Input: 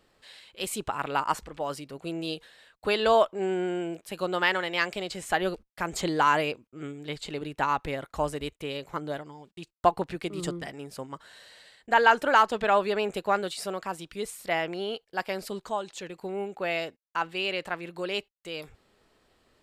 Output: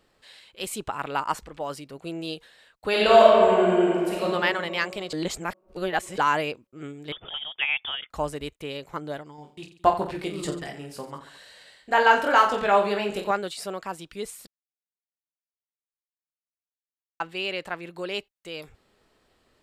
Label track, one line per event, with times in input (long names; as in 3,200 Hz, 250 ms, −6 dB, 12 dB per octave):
2.890000	4.240000	thrown reverb, RT60 2.2 s, DRR −6 dB
5.130000	6.180000	reverse
7.120000	8.100000	voice inversion scrambler carrier 3,500 Hz
9.360000	13.310000	reverse bouncing-ball delay first gap 20 ms, each gap 1.4×, echoes 5
14.470000	17.200000	silence